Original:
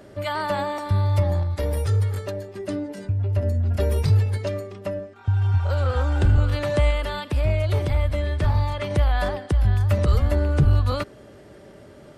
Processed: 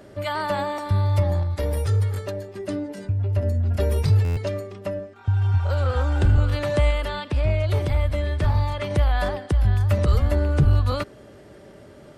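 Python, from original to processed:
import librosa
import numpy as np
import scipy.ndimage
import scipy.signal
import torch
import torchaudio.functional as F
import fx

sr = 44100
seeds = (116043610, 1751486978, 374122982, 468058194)

y = fx.lowpass(x, sr, hz=6900.0, slope=12, at=(7.08, 7.68))
y = fx.buffer_glitch(y, sr, at_s=(4.24,), block=512, repeats=10)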